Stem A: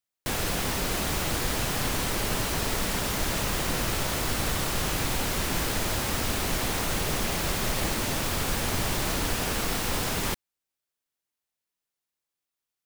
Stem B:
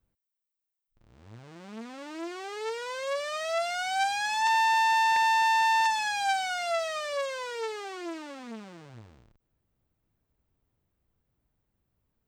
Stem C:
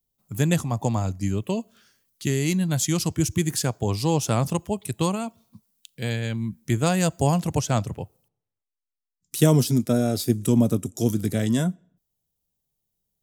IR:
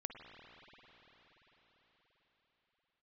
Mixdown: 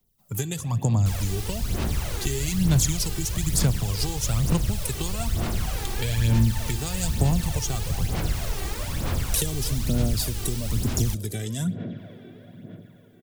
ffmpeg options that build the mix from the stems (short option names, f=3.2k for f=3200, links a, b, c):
-filter_complex "[0:a]equalizer=f=62:t=o:w=2.6:g=9,adelay=800,volume=-7dB[a];[1:a]adelay=1750,volume=-18dB[b];[2:a]acompressor=threshold=-26dB:ratio=5,volume=2dB,asplit=2[c][d];[d]volume=-3.5dB[e];[3:a]atrim=start_sample=2205[f];[e][f]afir=irnorm=-1:irlink=0[g];[a][b][c][g]amix=inputs=4:normalize=0,acrossover=split=160|3000[h][i][j];[i]acompressor=threshold=-35dB:ratio=5[k];[h][k][j]amix=inputs=3:normalize=0,aphaser=in_gain=1:out_gain=1:delay=2.6:decay=0.59:speed=1.1:type=sinusoidal"